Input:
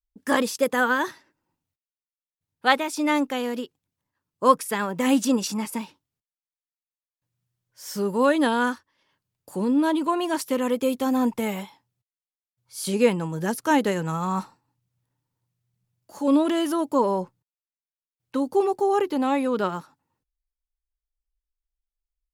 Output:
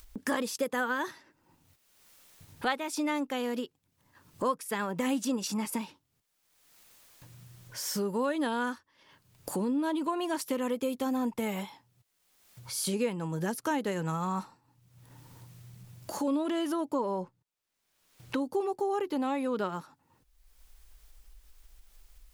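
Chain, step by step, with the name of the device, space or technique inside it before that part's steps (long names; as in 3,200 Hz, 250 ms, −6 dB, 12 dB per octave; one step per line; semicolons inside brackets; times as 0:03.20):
0:16.47–0:18.41: high-shelf EQ 7,900 Hz −5.5 dB
upward and downward compression (upward compression, threshold −36 dBFS; downward compressor 3 to 1, threshold −36 dBFS, peak gain reduction 18.5 dB)
level +4 dB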